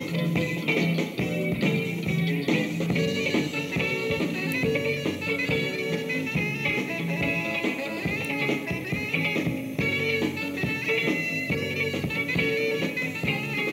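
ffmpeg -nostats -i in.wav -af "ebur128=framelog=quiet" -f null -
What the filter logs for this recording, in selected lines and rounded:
Integrated loudness:
  I:         -26.1 LUFS
  Threshold: -36.1 LUFS
Loudness range:
  LRA:         1.1 LU
  Threshold: -46.1 LUFS
  LRA low:   -26.7 LUFS
  LRA high:  -25.6 LUFS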